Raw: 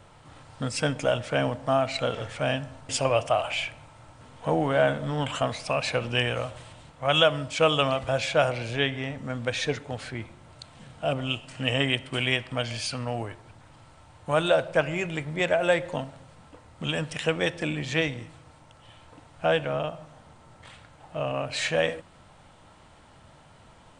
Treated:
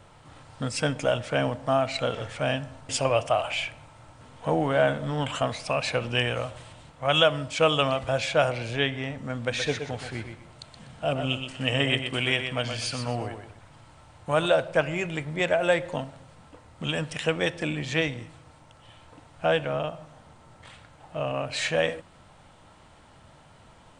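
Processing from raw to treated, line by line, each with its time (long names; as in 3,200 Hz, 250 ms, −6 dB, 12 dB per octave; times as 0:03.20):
0:09.39–0:14.46: repeating echo 123 ms, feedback 27%, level −7.5 dB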